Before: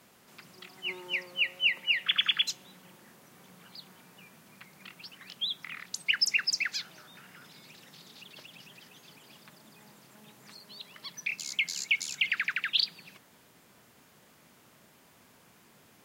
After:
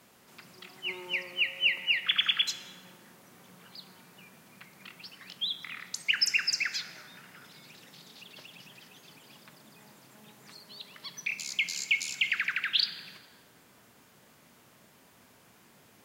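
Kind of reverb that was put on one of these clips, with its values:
dense smooth reverb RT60 2 s, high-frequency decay 0.55×, DRR 9.5 dB

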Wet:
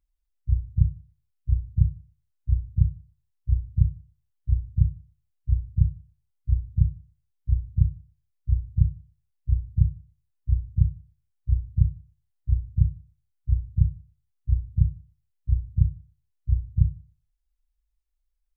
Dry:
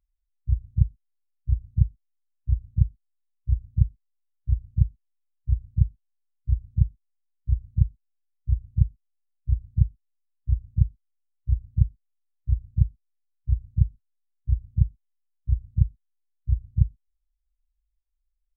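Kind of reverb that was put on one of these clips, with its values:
feedback delay network reverb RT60 0.43 s, low-frequency decay 1×, high-frequency decay 0.5×, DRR 8.5 dB

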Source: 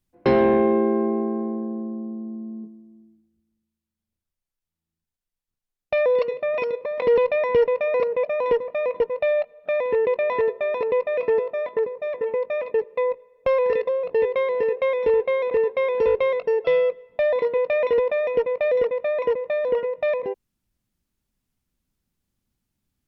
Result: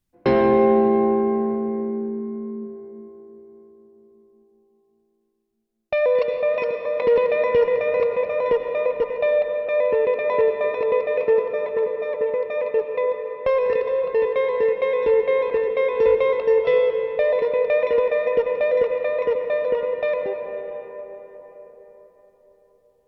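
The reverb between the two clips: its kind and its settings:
comb and all-pass reverb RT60 4.8 s, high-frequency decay 0.45×, pre-delay 55 ms, DRR 5 dB

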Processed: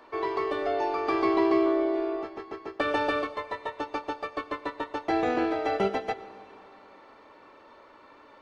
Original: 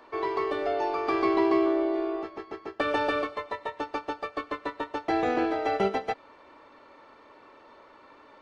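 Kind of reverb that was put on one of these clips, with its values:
dense smooth reverb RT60 3 s, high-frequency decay 0.95×, DRR 15 dB

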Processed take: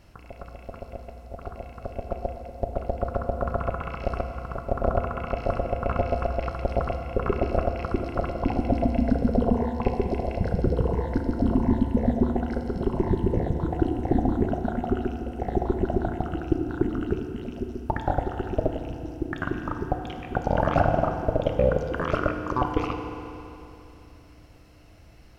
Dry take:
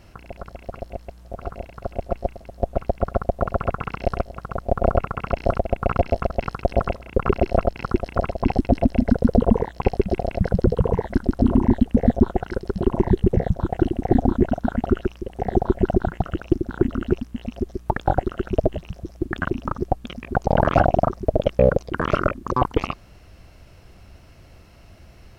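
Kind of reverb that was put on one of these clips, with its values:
feedback delay network reverb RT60 3 s, high-frequency decay 0.9×, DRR 4 dB
level −5.5 dB

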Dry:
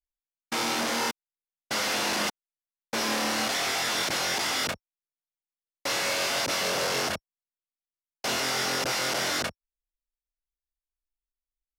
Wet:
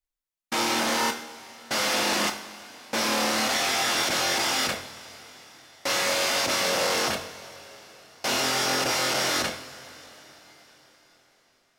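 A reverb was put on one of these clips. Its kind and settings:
coupled-rooms reverb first 0.53 s, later 4.9 s, from −18 dB, DRR 4 dB
level +1.5 dB

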